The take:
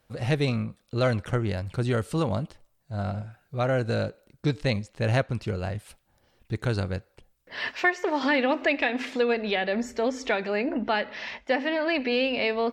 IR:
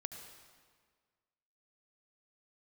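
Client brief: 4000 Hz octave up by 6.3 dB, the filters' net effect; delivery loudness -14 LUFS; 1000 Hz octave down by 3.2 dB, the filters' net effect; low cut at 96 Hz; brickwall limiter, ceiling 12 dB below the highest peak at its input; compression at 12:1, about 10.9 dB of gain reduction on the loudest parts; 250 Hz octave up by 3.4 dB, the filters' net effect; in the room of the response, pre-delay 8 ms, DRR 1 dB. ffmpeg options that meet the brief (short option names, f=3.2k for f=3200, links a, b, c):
-filter_complex "[0:a]highpass=96,equalizer=f=250:t=o:g=4.5,equalizer=f=1k:t=o:g=-5.5,equalizer=f=4k:t=o:g=8.5,acompressor=threshold=-29dB:ratio=12,alimiter=level_in=5.5dB:limit=-24dB:level=0:latency=1,volume=-5.5dB,asplit=2[a][b];[1:a]atrim=start_sample=2205,adelay=8[c];[b][c]afir=irnorm=-1:irlink=0,volume=1.5dB[d];[a][d]amix=inputs=2:normalize=0,volume=22.5dB"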